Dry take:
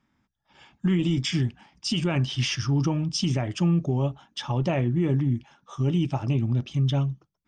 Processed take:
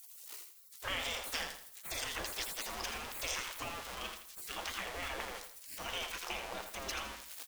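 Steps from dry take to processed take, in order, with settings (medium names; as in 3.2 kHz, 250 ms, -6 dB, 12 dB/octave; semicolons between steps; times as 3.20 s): jump at every zero crossing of -34.5 dBFS; spectral gate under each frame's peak -30 dB weak; feedback delay 82 ms, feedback 34%, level -8 dB; trim +4 dB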